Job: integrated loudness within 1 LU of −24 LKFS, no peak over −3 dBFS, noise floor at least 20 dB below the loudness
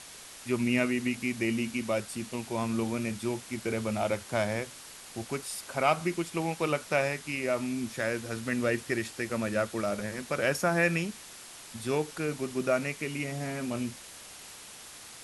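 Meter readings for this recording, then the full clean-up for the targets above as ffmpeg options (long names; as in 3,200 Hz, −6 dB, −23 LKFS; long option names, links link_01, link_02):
background noise floor −48 dBFS; target noise floor −51 dBFS; integrated loudness −31.0 LKFS; sample peak −12.0 dBFS; target loudness −24.0 LKFS
→ -af "afftdn=noise_reduction=6:noise_floor=-48"
-af "volume=7dB"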